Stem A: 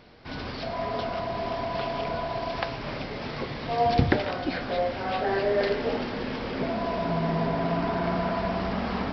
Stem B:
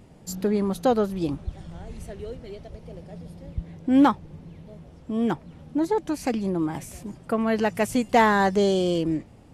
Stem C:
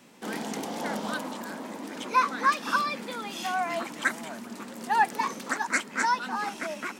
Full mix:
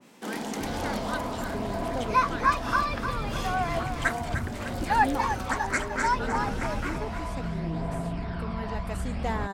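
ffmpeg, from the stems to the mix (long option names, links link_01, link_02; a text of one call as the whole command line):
ffmpeg -i stem1.wav -i stem2.wav -i stem3.wav -filter_complex "[0:a]asubboost=boost=4.5:cutoff=120,acompressor=threshold=-29dB:ratio=6,aphaser=in_gain=1:out_gain=1:delay=1.1:decay=0.41:speed=0.66:type=triangular,adelay=350,volume=-2.5dB[link_01];[1:a]equalizer=frequency=8400:width_type=o:width=0.38:gain=7,adelay=1100,volume=-14dB[link_02];[2:a]volume=0.5dB,asplit=2[link_03][link_04];[link_04]volume=-8.5dB,aecho=0:1:302|604|906|1208|1510|1812:1|0.45|0.202|0.0911|0.041|0.0185[link_05];[link_01][link_02][link_03][link_05]amix=inputs=4:normalize=0,adynamicequalizer=threshold=0.0141:dfrequency=1700:dqfactor=0.7:tfrequency=1700:tqfactor=0.7:attack=5:release=100:ratio=0.375:range=2.5:mode=cutabove:tftype=highshelf" out.wav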